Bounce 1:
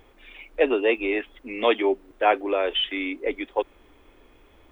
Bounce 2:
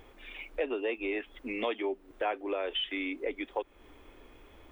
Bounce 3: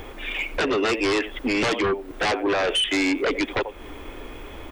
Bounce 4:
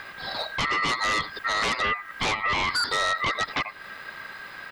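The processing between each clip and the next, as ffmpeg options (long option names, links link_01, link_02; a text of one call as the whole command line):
ffmpeg -i in.wav -af "acompressor=threshold=-33dB:ratio=3" out.wav
ffmpeg -i in.wav -filter_complex "[0:a]aecho=1:1:89:0.119,acrossover=split=500|3500[link_01][link_02][link_03];[link_03]alimiter=level_in=20.5dB:limit=-24dB:level=0:latency=1,volume=-20.5dB[link_04];[link_01][link_02][link_04]amix=inputs=3:normalize=0,aeval=exprs='0.119*sin(PI/2*4.47*val(0)/0.119)':channel_layout=same" out.wav
ffmpeg -i in.wav -af "aeval=exprs='val(0)*sin(2*PI*1600*n/s)':channel_layout=same" out.wav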